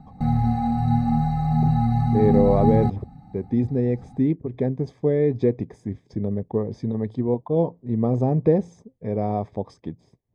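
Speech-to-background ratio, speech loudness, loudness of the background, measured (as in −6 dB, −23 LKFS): −2.5 dB, −24.0 LKFS, −21.5 LKFS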